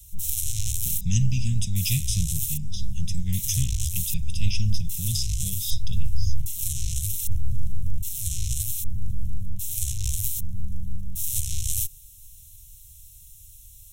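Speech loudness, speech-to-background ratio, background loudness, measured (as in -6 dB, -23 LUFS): -29.0 LUFS, 0.5 dB, -29.5 LUFS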